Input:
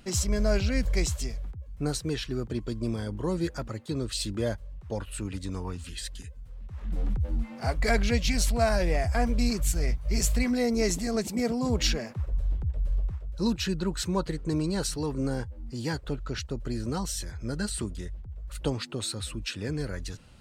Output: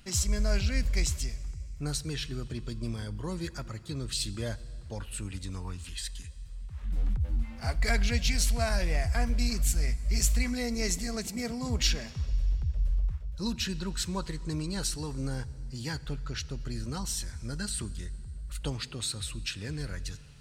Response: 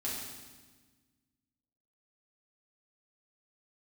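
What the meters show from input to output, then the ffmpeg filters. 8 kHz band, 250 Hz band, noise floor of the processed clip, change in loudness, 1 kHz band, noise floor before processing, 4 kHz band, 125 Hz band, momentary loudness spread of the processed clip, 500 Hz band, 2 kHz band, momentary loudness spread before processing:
+0.5 dB, -6.0 dB, -44 dBFS, -2.5 dB, -6.0 dB, -45 dBFS, 0.0 dB, -1.5 dB, 11 LU, -8.5 dB, -1.5 dB, 11 LU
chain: -filter_complex "[0:a]equalizer=f=430:w=0.45:g=-9.5,asplit=2[a][b];[1:a]atrim=start_sample=2205,asetrate=24255,aresample=44100[c];[b][c]afir=irnorm=-1:irlink=0,volume=-24dB[d];[a][d]amix=inputs=2:normalize=0"

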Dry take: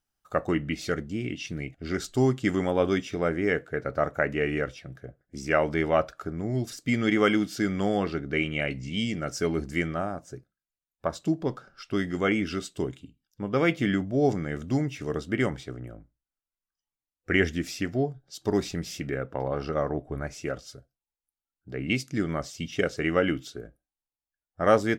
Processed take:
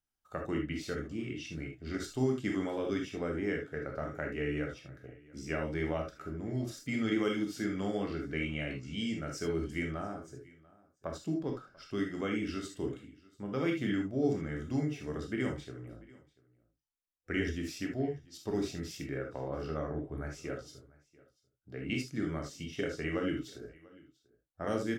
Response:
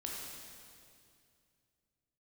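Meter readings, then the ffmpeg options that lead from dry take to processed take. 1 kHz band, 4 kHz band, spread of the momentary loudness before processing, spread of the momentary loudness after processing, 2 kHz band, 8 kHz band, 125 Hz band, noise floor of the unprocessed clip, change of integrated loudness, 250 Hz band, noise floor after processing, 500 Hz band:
-11.5 dB, -8.0 dB, 11 LU, 12 LU, -9.5 dB, -7.5 dB, -7.0 dB, under -85 dBFS, -8.0 dB, -6.5 dB, -78 dBFS, -9.0 dB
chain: -filter_complex "[0:a]acrossover=split=400|3000[a][b][c];[b]acompressor=threshold=-28dB:ratio=6[d];[a][d][c]amix=inputs=3:normalize=0,aecho=1:1:691:0.0668[e];[1:a]atrim=start_sample=2205,afade=t=out:st=0.13:d=0.01,atrim=end_sample=6174[f];[e][f]afir=irnorm=-1:irlink=0,volume=-5dB"

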